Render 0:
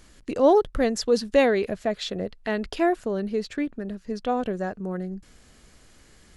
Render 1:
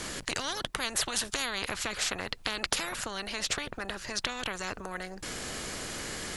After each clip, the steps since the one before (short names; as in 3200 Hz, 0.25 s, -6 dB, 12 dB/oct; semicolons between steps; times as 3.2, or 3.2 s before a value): in parallel at +2 dB: compressor, threshold -32 dBFS, peak gain reduction 18 dB; on the sum: spectral compressor 10:1; gain -1 dB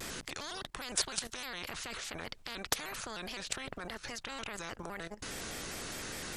level quantiser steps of 14 dB; shaped vibrato square 4.9 Hz, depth 160 cents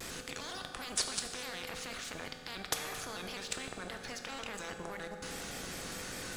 sample leveller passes 1; on a send at -3.5 dB: reverb RT60 2.5 s, pre-delay 3 ms; on the sum: gain -5 dB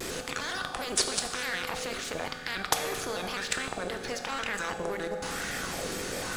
LFO bell 1 Hz 360–1800 Hz +9 dB; gain +6 dB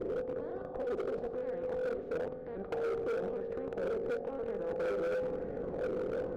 synth low-pass 480 Hz, resonance Q 4; overloaded stage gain 27 dB; gain -4 dB